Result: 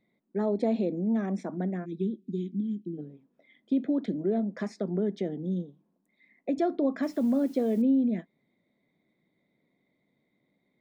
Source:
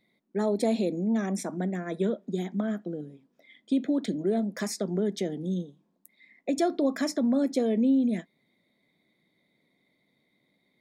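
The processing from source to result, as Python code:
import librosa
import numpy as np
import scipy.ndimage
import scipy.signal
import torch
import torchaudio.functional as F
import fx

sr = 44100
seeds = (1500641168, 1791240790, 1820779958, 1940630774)

y = fx.cheby1_bandstop(x, sr, low_hz=370.0, high_hz=2600.0, order=4, at=(1.84, 2.97), fade=0.02)
y = fx.spacing_loss(y, sr, db_at_10k=28)
y = fx.quant_dither(y, sr, seeds[0], bits=10, dither='triangular', at=(7.03, 7.82))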